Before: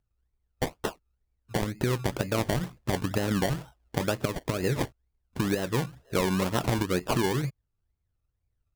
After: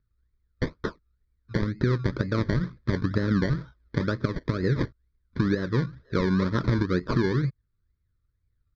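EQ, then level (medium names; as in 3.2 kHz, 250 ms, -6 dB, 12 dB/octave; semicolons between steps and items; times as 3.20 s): low-pass 4.2 kHz 24 dB/octave; dynamic bell 2.7 kHz, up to -6 dB, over -48 dBFS, Q 1.1; static phaser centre 2.8 kHz, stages 6; +5.0 dB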